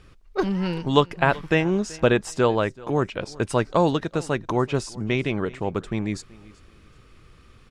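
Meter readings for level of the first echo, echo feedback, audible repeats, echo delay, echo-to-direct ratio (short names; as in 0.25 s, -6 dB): -22.0 dB, 25%, 2, 0.381 s, -21.5 dB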